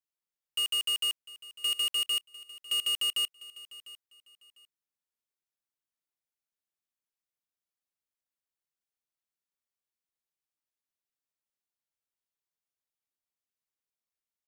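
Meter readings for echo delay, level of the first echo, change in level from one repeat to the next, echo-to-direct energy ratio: 700 ms, -18.5 dB, -12.0 dB, -18.0 dB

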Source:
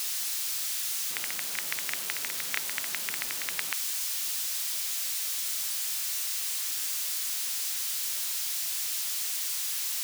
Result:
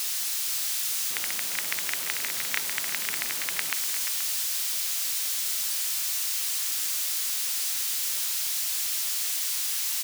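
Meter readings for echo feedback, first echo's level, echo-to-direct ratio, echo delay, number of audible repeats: no regular repeats, -11.0 dB, -8.0 dB, 350 ms, 3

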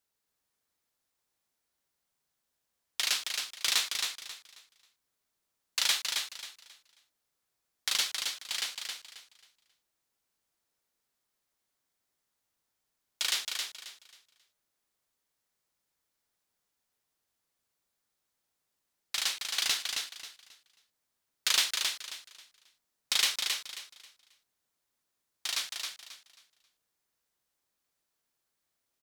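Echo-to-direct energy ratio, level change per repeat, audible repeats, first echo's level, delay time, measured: -4.5 dB, -11.5 dB, 3, -5.0 dB, 269 ms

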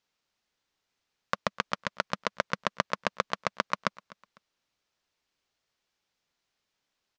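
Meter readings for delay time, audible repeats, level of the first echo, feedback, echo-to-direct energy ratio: 251 ms, 2, -21.5 dB, 32%, -21.0 dB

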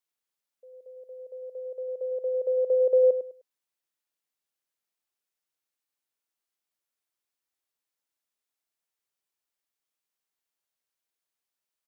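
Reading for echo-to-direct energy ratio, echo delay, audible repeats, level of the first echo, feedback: -10.0 dB, 102 ms, 2, -10.5 dB, 24%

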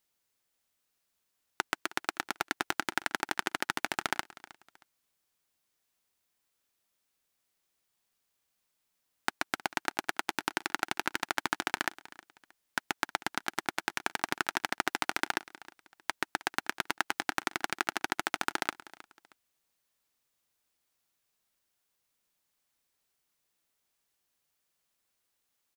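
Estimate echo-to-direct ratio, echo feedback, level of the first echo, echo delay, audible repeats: -18.5 dB, 29%, -19.0 dB, 314 ms, 2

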